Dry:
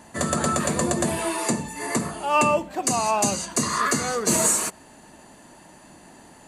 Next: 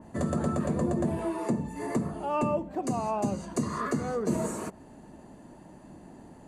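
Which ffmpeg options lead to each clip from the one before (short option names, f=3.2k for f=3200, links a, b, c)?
-af "tiltshelf=f=930:g=9,acompressor=threshold=-26dB:ratio=1.5,adynamicequalizer=threshold=0.00794:dfrequency=2600:dqfactor=0.7:tfrequency=2600:tqfactor=0.7:attack=5:release=100:ratio=0.375:range=3:mode=cutabove:tftype=highshelf,volume=-5.5dB"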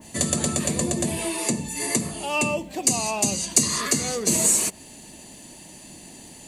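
-af "aexciter=amount=9.2:drive=5.2:freq=2.1k,volume=1.5dB"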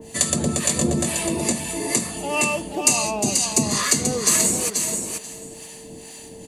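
-filter_complex "[0:a]aeval=exprs='val(0)+0.00562*sin(2*PI*450*n/s)':c=same,acrossover=split=740[a][b];[a]aeval=exprs='val(0)*(1-0.7/2+0.7/2*cos(2*PI*2.2*n/s))':c=same[c];[b]aeval=exprs='val(0)*(1-0.7/2-0.7/2*cos(2*PI*2.2*n/s))':c=same[d];[c][d]amix=inputs=2:normalize=0,asplit=2[e][f];[f]aecho=0:1:485|970|1455:0.531|0.0903|0.0153[g];[e][g]amix=inputs=2:normalize=0,volume=5dB"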